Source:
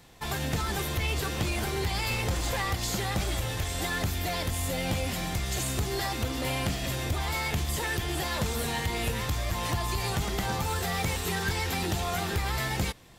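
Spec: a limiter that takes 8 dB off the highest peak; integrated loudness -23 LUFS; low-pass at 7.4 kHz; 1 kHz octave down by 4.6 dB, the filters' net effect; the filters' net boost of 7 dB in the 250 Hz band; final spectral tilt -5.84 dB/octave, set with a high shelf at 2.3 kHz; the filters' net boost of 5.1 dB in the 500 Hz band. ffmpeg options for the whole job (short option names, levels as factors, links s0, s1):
-af "lowpass=7400,equalizer=f=250:t=o:g=8.5,equalizer=f=500:t=o:g=6,equalizer=f=1000:t=o:g=-8.5,highshelf=f=2300:g=-7.5,volume=2.51,alimiter=limit=0.2:level=0:latency=1"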